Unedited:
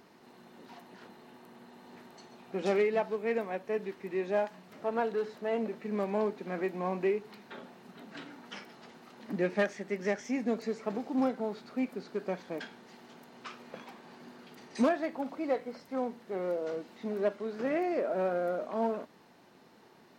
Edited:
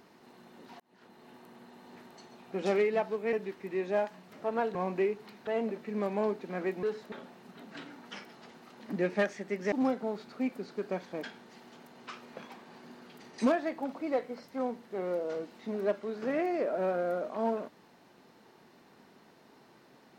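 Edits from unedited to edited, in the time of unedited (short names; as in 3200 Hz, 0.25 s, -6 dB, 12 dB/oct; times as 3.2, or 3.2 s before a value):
0.8–1.31 fade in
3.33–3.73 cut
5.15–5.44 swap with 6.8–7.52
10.12–11.09 cut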